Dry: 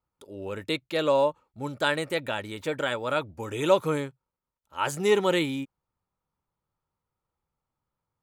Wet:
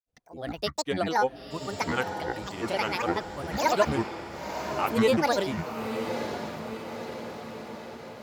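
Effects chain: granulator, spray 100 ms, pitch spread up and down by 12 st; echo that smears into a reverb 979 ms, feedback 59%, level -8 dB

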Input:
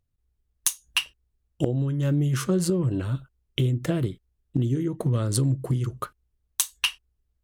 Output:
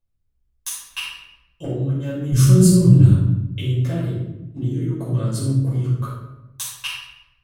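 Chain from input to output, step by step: 2.32–3.10 s: tone controls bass +15 dB, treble +14 dB; simulated room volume 330 m³, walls mixed, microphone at 5.3 m; trim -13.5 dB

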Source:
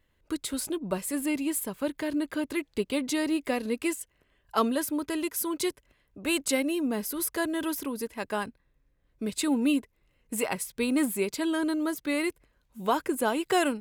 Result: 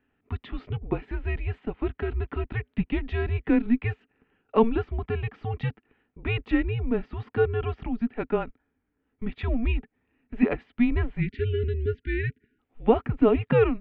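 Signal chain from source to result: mistuned SSB -230 Hz 150–3100 Hz; small resonant body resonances 260/430 Hz, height 13 dB, ringing for 55 ms; spectral selection erased 11.21–12.59 s, 450–1400 Hz

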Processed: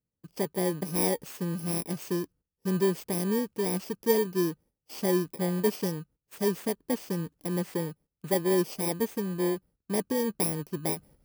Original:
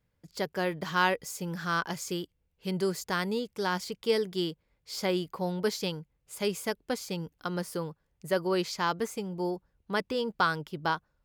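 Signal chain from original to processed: bit-reversed sample order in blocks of 32 samples; peaking EQ 280 Hz +11 dB 2.7 oct; gate -49 dBFS, range -14 dB; reverse; upward compressor, threshold -43 dBFS; reverse; trim -4.5 dB

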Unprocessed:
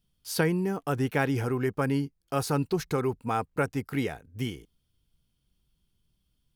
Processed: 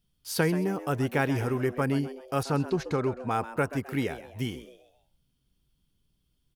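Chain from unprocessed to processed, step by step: 2.43–3.31 s: distance through air 74 m; frequency-shifting echo 131 ms, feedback 38%, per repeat +120 Hz, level -14 dB

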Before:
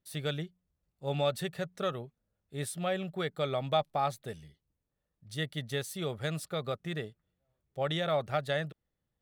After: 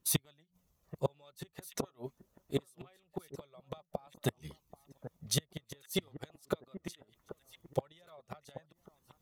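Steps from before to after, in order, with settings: inverted gate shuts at -29 dBFS, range -38 dB; bass shelf 65 Hz -6.5 dB; echo whose repeats swap between lows and highs 783 ms, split 1.4 kHz, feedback 54%, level -13.5 dB; flange 0.22 Hz, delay 0.7 ms, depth 2.6 ms, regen -50%; graphic EQ with 31 bands 100 Hz -6 dB, 1 kHz +8 dB, 1.6 kHz -5 dB, 6.3 kHz +7 dB, 12.5 kHz +9 dB; harmonic-percussive split harmonic -8 dB; trim +17 dB

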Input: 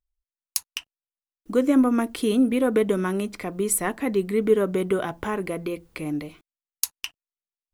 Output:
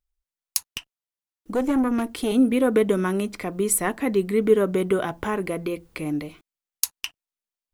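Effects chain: 0.68–2.35 s: valve stage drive 18 dB, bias 0.4; trim +1.5 dB

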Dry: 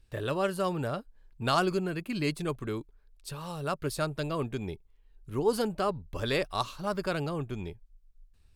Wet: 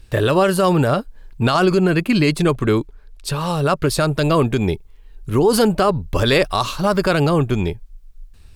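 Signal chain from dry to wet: 1.45–4.00 s: treble shelf 8.6 kHz -6.5 dB; loudness maximiser +23 dB; trim -5.5 dB

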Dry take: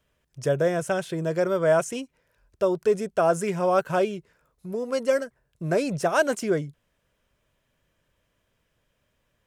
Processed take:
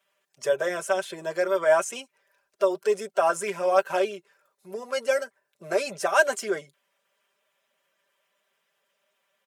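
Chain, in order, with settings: coarse spectral quantiser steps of 15 dB; high-pass 560 Hz 12 dB/octave; comb 5.1 ms; trim +1 dB

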